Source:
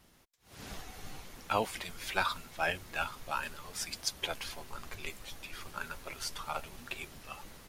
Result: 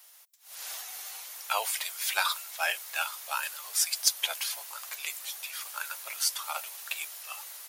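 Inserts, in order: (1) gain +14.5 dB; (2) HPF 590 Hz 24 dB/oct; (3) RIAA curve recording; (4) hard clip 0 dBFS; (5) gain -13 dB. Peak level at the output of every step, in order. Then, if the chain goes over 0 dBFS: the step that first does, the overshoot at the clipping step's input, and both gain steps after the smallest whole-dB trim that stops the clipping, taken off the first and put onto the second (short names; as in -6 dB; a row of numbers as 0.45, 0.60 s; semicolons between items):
+1.5, -2.0, +5.5, 0.0, -13.0 dBFS; step 1, 5.5 dB; step 1 +8.5 dB, step 5 -7 dB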